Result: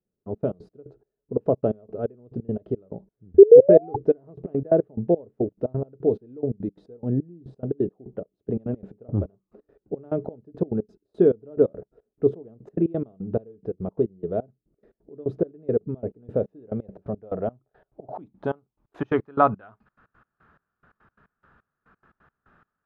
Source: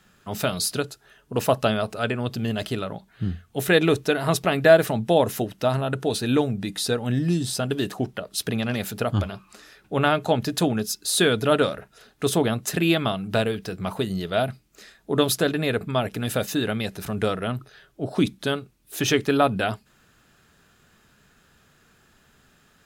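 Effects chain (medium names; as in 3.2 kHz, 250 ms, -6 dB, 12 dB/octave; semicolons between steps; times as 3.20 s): painted sound rise, 3.38–3.96 s, 380–850 Hz -10 dBFS; trance gate "...x.x.x..xx" 175 bpm -24 dB; low-pass sweep 440 Hz -> 1.3 kHz, 16.20–19.81 s; trim -2 dB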